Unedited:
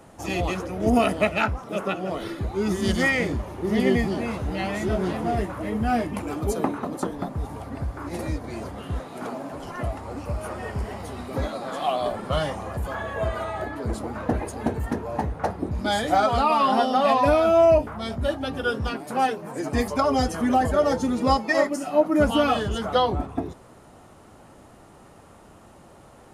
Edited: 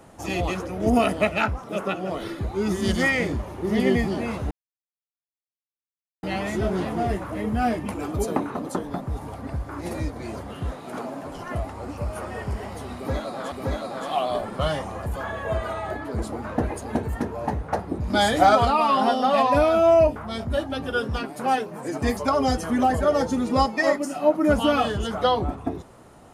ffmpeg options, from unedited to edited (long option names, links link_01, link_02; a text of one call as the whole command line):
ffmpeg -i in.wav -filter_complex "[0:a]asplit=5[link_01][link_02][link_03][link_04][link_05];[link_01]atrim=end=4.51,asetpts=PTS-STARTPTS,afade=type=out:start_time=4.506:duration=0.004:curve=hsin,apad=pad_dur=1.72[link_06];[link_02]atrim=start=4.51:end=11.802,asetpts=PTS-STARTPTS,afade=type=in:duration=0.004:curve=hsin[link_07];[link_03]atrim=start=11.228:end=15.812[link_08];[link_04]atrim=start=15.808:end=16.362,asetpts=PTS-STARTPTS,volume=4dB[link_09];[link_05]atrim=start=16.358[link_10];[link_06][link_07]concat=n=2:v=0:a=1[link_11];[link_11][link_08]acrossfade=duration=0.004:curve1=hsin:curve2=hsin[link_12];[link_12][link_09]acrossfade=duration=0.004:curve1=hsin:curve2=hsin[link_13];[link_13][link_10]acrossfade=duration=0.004:curve1=hsin:curve2=hsin" out.wav